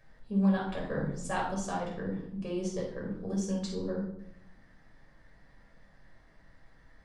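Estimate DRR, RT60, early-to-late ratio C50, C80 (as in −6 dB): −3.0 dB, 0.70 s, 4.0 dB, 8.0 dB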